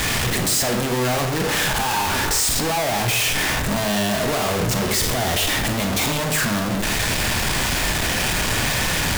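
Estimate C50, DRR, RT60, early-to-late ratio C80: 7.5 dB, 5.0 dB, 0.75 s, 11.0 dB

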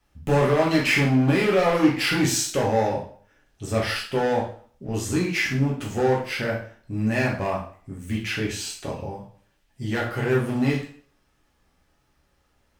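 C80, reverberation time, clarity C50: 10.5 dB, 0.50 s, 6.0 dB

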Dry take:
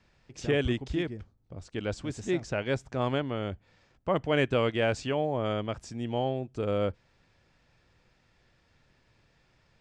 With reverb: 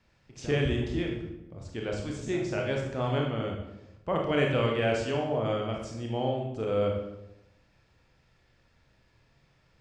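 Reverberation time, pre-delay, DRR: 0.90 s, 25 ms, 0.0 dB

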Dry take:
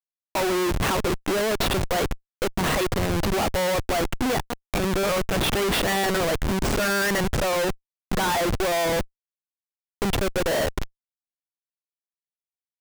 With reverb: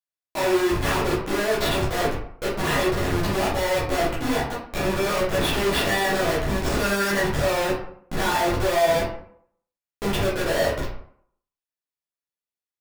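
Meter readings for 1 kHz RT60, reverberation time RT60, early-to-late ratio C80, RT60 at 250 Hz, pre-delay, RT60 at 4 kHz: 0.65 s, 0.65 s, 8.0 dB, 0.65 s, 8 ms, 0.35 s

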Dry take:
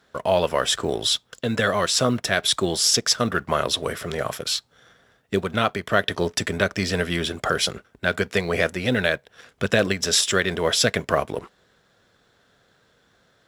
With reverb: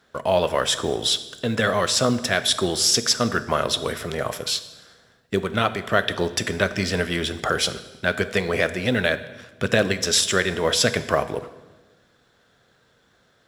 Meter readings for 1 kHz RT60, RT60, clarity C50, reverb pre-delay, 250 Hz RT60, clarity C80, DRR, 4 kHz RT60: 1.1 s, 1.2 s, 14.0 dB, 7 ms, 1.5 s, 15.5 dB, 11.5 dB, 1.0 s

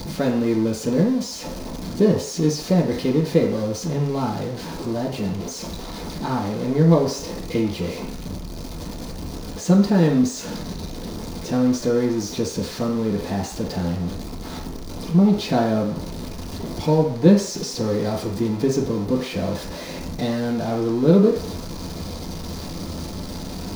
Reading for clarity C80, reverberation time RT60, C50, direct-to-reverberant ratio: 10.5 dB, 0.55 s, 7.0 dB, -3.0 dB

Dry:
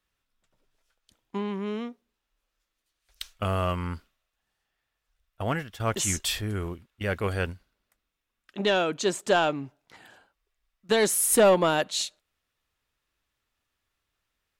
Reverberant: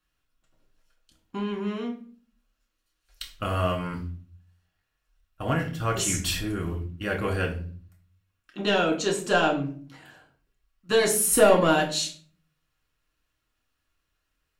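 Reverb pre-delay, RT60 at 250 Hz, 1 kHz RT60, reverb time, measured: 4 ms, 0.70 s, 0.40 s, 0.45 s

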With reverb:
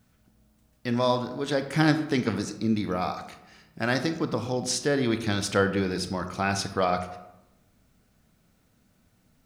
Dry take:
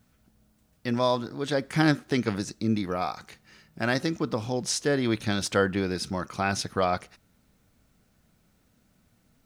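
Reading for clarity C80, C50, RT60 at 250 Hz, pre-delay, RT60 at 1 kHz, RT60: 12.5 dB, 10.5 dB, 1.1 s, 24 ms, 0.90 s, 0.95 s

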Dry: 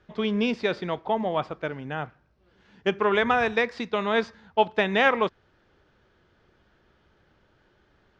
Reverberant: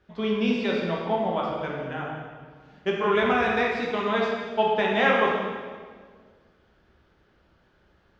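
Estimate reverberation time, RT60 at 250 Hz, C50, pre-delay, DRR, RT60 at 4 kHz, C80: 1.7 s, 2.0 s, 0.5 dB, 6 ms, -3.0 dB, 1.4 s, 2.5 dB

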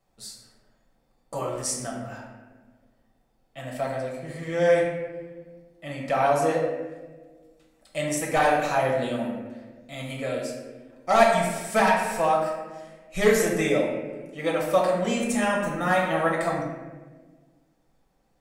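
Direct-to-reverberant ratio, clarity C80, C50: -3.5 dB, 4.5 dB, 2.0 dB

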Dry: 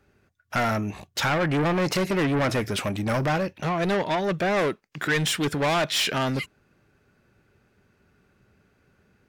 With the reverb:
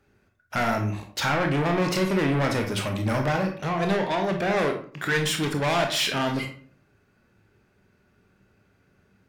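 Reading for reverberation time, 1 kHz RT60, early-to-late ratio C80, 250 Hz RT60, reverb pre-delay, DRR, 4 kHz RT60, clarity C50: 0.50 s, 0.45 s, 12.0 dB, 0.60 s, 21 ms, 3.0 dB, 0.30 s, 7.5 dB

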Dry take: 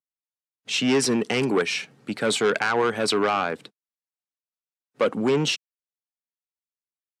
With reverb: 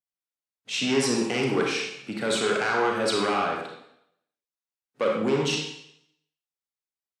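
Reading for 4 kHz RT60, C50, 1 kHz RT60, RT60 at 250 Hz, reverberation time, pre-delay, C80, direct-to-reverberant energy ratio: 0.75 s, 2.0 dB, 0.75 s, 0.80 s, 0.75 s, 31 ms, 5.0 dB, -1.0 dB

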